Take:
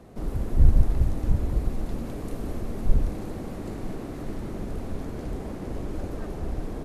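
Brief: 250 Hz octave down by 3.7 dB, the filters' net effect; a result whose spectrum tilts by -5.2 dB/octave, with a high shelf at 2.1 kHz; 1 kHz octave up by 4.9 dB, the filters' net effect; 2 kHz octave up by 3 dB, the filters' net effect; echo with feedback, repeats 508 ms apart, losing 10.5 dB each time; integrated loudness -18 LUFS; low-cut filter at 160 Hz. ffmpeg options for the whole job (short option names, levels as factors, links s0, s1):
-af "highpass=160,equalizer=f=250:t=o:g=-4,equalizer=f=1000:t=o:g=7,equalizer=f=2000:t=o:g=3.5,highshelf=f=2100:g=-4,aecho=1:1:508|1016|1524:0.299|0.0896|0.0269,volume=8.91"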